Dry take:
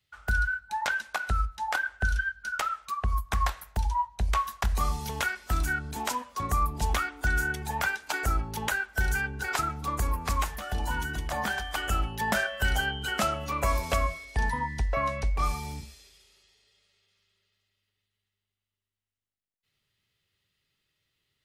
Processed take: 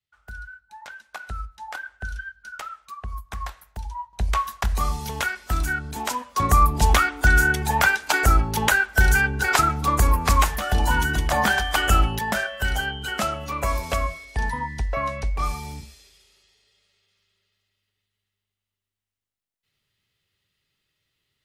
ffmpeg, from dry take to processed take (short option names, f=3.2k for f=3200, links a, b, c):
-af "asetnsamples=n=441:p=0,asendcmd='1.13 volume volume -5.5dB;4.13 volume volume 3.5dB;6.36 volume volume 10dB;12.19 volume volume 2dB',volume=-12dB"